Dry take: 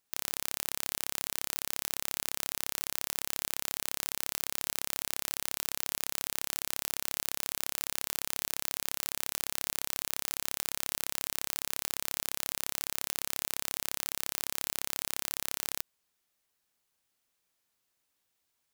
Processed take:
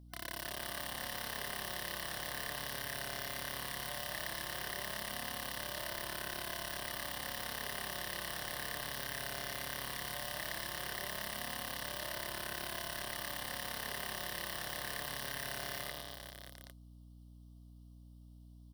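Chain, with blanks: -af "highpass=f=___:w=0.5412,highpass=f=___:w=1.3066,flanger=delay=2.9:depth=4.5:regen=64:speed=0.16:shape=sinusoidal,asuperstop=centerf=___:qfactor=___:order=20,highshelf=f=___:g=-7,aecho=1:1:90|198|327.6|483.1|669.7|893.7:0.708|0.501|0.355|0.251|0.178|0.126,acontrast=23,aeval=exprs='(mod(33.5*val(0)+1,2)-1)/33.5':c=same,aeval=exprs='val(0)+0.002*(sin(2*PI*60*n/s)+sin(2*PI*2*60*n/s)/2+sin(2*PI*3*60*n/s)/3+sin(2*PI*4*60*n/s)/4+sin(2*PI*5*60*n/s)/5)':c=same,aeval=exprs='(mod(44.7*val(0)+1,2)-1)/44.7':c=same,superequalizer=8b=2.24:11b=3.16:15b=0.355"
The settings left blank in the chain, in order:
110, 110, 1900, 1.2, 12k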